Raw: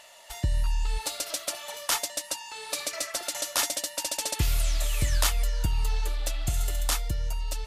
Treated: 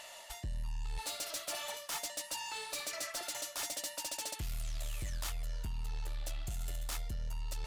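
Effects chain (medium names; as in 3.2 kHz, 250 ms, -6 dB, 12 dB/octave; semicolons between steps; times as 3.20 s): peaking EQ 450 Hz -2.5 dB 0.32 oct; reverse; compression 6:1, threshold -34 dBFS, peak gain reduction 14 dB; reverse; saturation -35 dBFS, distortion -14 dB; trim +1.5 dB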